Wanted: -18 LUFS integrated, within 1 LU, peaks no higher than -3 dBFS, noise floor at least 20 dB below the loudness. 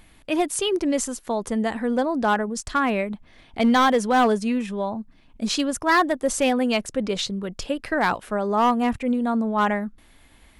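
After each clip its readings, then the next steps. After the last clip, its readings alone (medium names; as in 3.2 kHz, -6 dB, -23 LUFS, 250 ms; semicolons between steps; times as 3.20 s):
clipped samples 1.0%; clipping level -13.0 dBFS; loudness -23.0 LUFS; peak level -13.0 dBFS; loudness target -18.0 LUFS
-> clip repair -13 dBFS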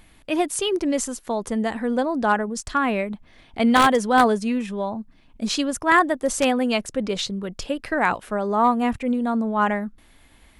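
clipped samples 0.0%; loudness -22.5 LUFS; peak level -4.0 dBFS; loudness target -18.0 LUFS
-> trim +4.5 dB; peak limiter -3 dBFS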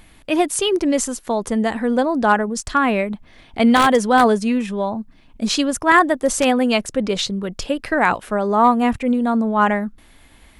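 loudness -18.5 LUFS; peak level -3.0 dBFS; noise floor -50 dBFS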